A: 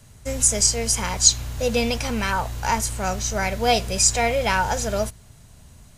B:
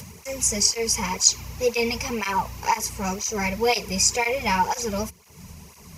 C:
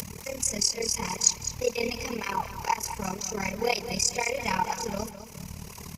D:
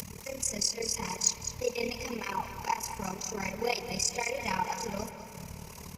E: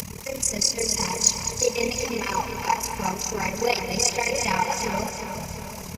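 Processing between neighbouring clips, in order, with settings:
rippled EQ curve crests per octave 0.81, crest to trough 10 dB; upward compressor, threshold -27 dBFS; cancelling through-zero flanger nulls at 2 Hz, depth 3 ms
upward compressor, threshold -25 dBFS; AM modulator 37 Hz, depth 80%; feedback delay 206 ms, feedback 35%, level -11.5 dB; trim -2 dB
saturation -7 dBFS, distortion -25 dB; reverberation RT60 3.9 s, pre-delay 56 ms, DRR 11.5 dB; trim -4 dB
feedback delay 359 ms, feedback 51%, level -7.5 dB; trim +7.5 dB

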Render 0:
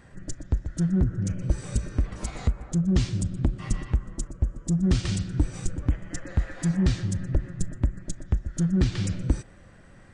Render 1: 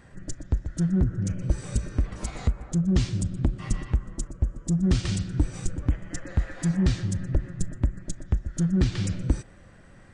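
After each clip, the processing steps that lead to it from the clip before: no audible change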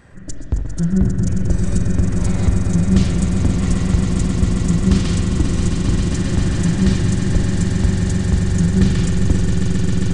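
echo with a slow build-up 134 ms, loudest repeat 8, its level -8 dB; on a send at -4 dB: reverberation RT60 1.1 s, pre-delay 42 ms; on the sum: trim +4.5 dB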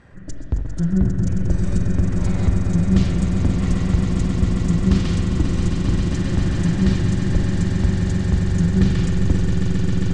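distance through air 73 m; trim -2 dB

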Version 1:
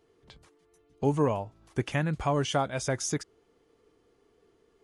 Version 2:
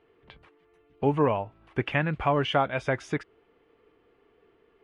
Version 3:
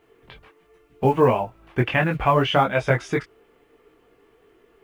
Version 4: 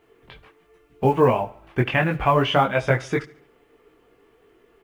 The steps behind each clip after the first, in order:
FFT filter 160 Hz 0 dB, 2.7 kHz +7 dB, 6.4 kHz -19 dB
companded quantiser 8-bit; chorus voices 6, 0.72 Hz, delay 20 ms, depth 4.9 ms; trim +9 dB
feedback delay 71 ms, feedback 48%, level -20.5 dB

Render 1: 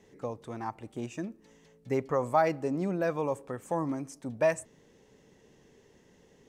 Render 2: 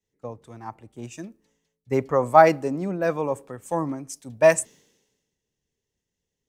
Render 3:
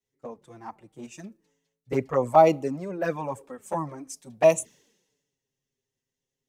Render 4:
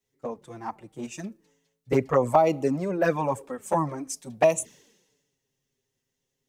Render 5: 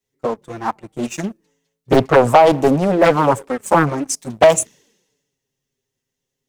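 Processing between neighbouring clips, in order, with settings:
treble shelf 7.5 kHz +5.5 dB; three bands expanded up and down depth 100%; trim +4 dB
bass shelf 76 Hz -6.5 dB; touch-sensitive flanger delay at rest 7.6 ms, full sweep at -16.5 dBFS
compression 5:1, threshold -22 dBFS, peak gain reduction 10.5 dB; trim +5.5 dB
waveshaping leveller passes 2; loudspeaker Doppler distortion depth 0.74 ms; trim +5 dB

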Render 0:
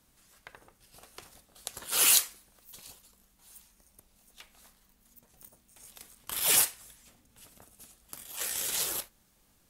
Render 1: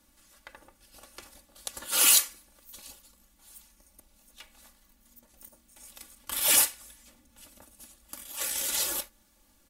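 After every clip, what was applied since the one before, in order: comb 3.5 ms, depth 80%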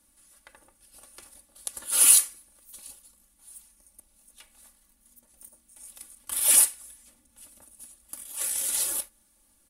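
peaking EQ 9.8 kHz +13.5 dB 0.45 oct; trim -4.5 dB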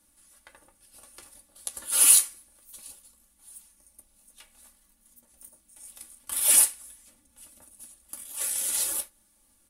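flange 1.4 Hz, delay 9.5 ms, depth 3.4 ms, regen -49%; trim +4 dB

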